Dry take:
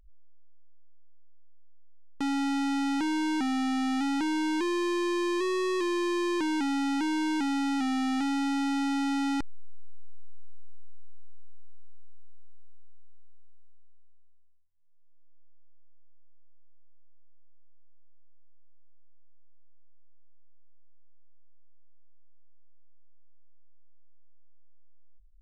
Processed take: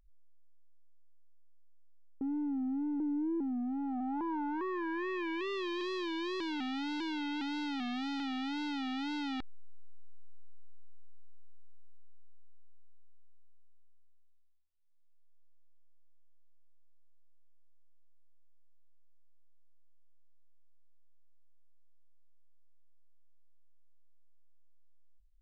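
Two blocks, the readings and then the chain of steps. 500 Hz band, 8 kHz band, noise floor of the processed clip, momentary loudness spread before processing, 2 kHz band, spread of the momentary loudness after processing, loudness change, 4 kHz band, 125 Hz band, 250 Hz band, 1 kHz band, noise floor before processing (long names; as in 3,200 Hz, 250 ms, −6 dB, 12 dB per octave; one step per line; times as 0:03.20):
−8.0 dB, below −15 dB, −57 dBFS, 0 LU, −7.0 dB, 2 LU, −7.5 dB, −5.5 dB, can't be measured, −7.5 dB, −8.0 dB, −48 dBFS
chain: low-pass filter sweep 440 Hz → 3,800 Hz, 0:03.56–0:05.71
tape wow and flutter 120 cents
level −9 dB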